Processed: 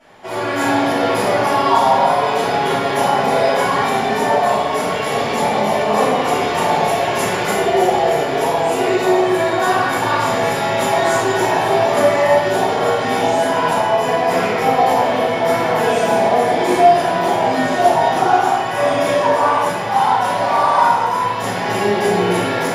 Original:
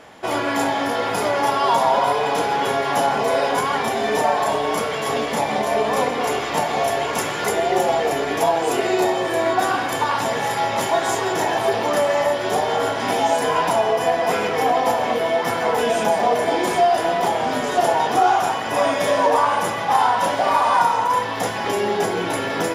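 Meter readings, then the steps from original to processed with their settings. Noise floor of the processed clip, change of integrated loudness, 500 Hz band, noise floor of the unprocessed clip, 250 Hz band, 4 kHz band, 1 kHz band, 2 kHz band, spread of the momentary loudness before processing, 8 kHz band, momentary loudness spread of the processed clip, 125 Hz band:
−20 dBFS, +4.0 dB, +4.0 dB, −25 dBFS, +5.5 dB, +2.5 dB, +3.5 dB, +3.5 dB, 5 LU, +1.0 dB, 4 LU, +7.0 dB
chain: automatic gain control gain up to 7 dB
rectangular room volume 350 cubic metres, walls mixed, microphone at 7.2 metres
level −16.5 dB

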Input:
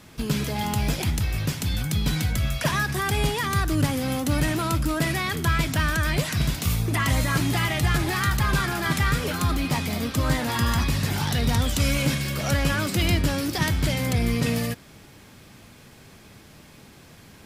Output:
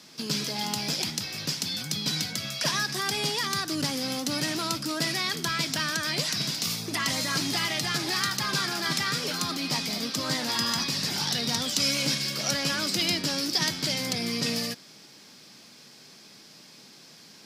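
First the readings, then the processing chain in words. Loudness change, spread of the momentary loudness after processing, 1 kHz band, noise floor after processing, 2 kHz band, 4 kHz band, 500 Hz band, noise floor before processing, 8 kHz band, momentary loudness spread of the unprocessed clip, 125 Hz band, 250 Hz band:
−2.5 dB, 4 LU, −5.0 dB, −51 dBFS, −3.5 dB, +4.5 dB, −5.5 dB, −49 dBFS, +2.0 dB, 3 LU, −13.5 dB, −6.0 dB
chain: high-pass filter 160 Hz 24 dB per octave
parametric band 5,000 Hz +15 dB 0.96 octaves
level −5.5 dB

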